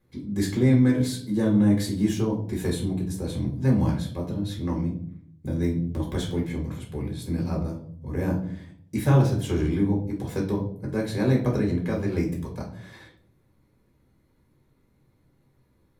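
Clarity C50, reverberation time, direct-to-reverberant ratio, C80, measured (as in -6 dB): 8.0 dB, 0.60 s, -1.5 dB, 12.5 dB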